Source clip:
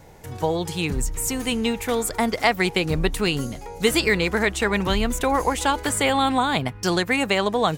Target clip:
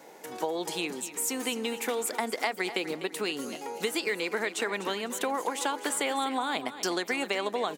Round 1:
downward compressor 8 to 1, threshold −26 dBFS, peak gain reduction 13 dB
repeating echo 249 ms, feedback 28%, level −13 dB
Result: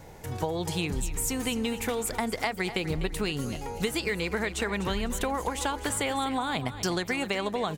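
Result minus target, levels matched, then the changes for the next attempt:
250 Hz band +3.0 dB
add after downward compressor: high-pass filter 260 Hz 24 dB per octave

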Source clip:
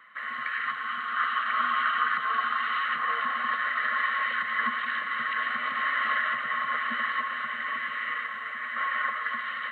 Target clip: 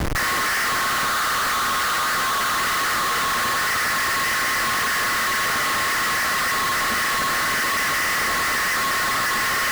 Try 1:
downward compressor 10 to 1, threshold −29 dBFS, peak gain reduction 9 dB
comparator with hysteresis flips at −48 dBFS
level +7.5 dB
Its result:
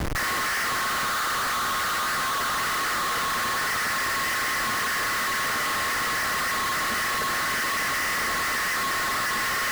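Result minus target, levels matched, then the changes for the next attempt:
downward compressor: peak gain reduction +9 dB
remove: downward compressor 10 to 1, threshold −29 dBFS, peak gain reduction 9 dB

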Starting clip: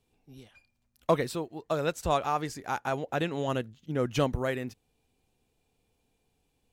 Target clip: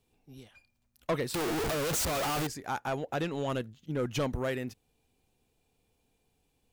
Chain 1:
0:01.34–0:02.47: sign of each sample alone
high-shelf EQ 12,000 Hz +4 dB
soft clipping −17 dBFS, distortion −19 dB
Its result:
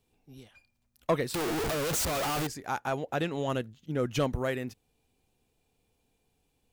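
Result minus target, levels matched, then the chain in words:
soft clipping: distortion −8 dB
0:01.34–0:02.47: sign of each sample alone
high-shelf EQ 12,000 Hz +4 dB
soft clipping −24 dBFS, distortion −11 dB

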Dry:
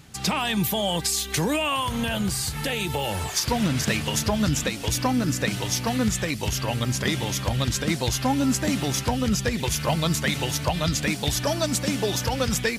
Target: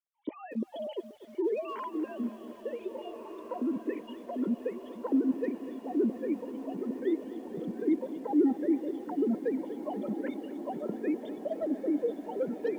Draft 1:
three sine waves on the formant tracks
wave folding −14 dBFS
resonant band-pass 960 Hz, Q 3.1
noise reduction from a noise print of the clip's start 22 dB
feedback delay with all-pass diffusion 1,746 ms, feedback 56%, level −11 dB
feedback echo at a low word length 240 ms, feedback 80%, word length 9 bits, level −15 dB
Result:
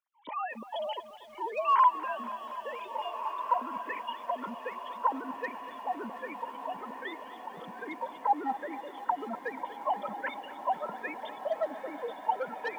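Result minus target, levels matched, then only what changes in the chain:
1,000 Hz band +15.0 dB
change: resonant band-pass 350 Hz, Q 3.1

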